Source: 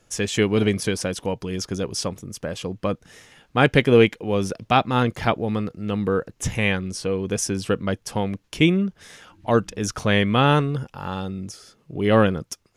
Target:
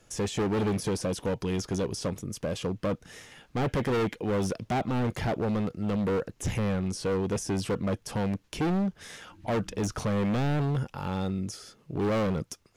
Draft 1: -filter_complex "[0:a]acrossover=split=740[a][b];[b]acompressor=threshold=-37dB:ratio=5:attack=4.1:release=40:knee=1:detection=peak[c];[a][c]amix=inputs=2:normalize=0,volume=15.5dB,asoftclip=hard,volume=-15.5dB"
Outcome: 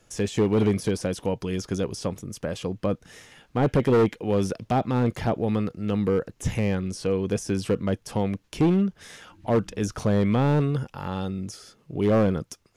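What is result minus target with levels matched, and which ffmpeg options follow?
overloaded stage: distortion -7 dB
-filter_complex "[0:a]acrossover=split=740[a][b];[b]acompressor=threshold=-37dB:ratio=5:attack=4.1:release=40:knee=1:detection=peak[c];[a][c]amix=inputs=2:normalize=0,volume=24.5dB,asoftclip=hard,volume=-24.5dB"

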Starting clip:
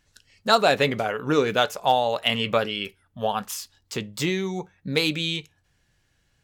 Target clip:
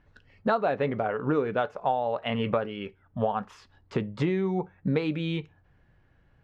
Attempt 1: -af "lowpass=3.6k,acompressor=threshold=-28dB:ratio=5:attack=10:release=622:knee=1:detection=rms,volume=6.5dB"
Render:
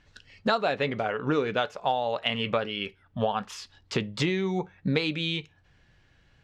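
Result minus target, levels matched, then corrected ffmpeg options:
4000 Hz band +10.0 dB
-af "lowpass=1.4k,acompressor=threshold=-28dB:ratio=5:attack=10:release=622:knee=1:detection=rms,volume=6.5dB"

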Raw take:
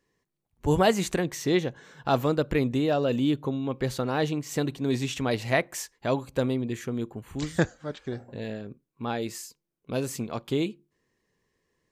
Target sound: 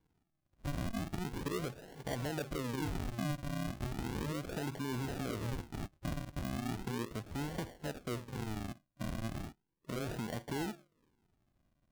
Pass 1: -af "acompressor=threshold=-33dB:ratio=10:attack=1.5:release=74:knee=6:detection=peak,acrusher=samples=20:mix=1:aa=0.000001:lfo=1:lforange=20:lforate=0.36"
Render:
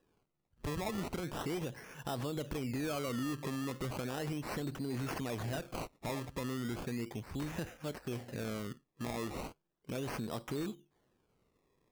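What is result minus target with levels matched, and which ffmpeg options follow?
decimation with a swept rate: distortion -12 dB
-af "acompressor=threshold=-33dB:ratio=10:attack=1.5:release=74:knee=6:detection=peak,acrusher=samples=68:mix=1:aa=0.000001:lfo=1:lforange=68:lforate=0.36"

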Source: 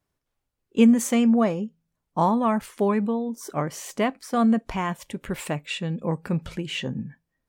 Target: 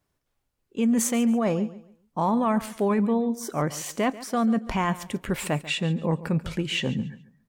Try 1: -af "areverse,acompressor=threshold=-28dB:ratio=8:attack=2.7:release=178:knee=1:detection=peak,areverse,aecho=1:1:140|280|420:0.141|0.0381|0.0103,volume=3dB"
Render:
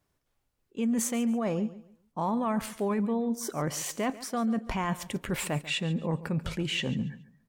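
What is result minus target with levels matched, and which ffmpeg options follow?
compressor: peak gain reduction +5.5 dB
-af "areverse,acompressor=threshold=-21.5dB:ratio=8:attack=2.7:release=178:knee=1:detection=peak,areverse,aecho=1:1:140|280|420:0.141|0.0381|0.0103,volume=3dB"

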